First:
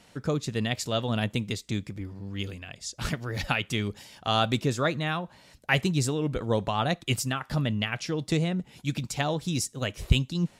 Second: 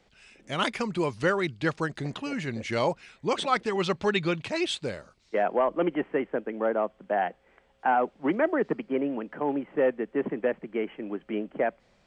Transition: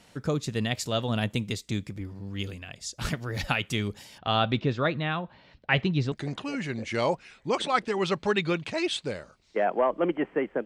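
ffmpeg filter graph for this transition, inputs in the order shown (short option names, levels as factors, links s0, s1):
-filter_complex "[0:a]asettb=1/sr,asplit=3[s0][s1][s2];[s0]atrim=end=4.184[s3];[s1]atrim=start=4.18:end=6.12,asetpts=PTS-STARTPTS,afade=t=in:d=0.004:c=qsin,afade=t=out:st=1.936:d=0.004:c=qsin,lowpass=f=3900:w=0.5412,lowpass=f=3900:w=1.3066[s4];[s2]atrim=start=6.116[s5];[s3][s4]acrossfade=d=0.004:c1=hsin:c2=qsin[s6];[s6][s5]acrossfade=d=0.004:c1=qsin:c2=hsin,apad=whole_dur=10.65,atrim=end=10.65,atrim=end=6.122[s7];[1:a]atrim=start=1.898:end=6.43[s8];[s7][s8]acrossfade=d=0.004:c1=hsin:c2=hsin"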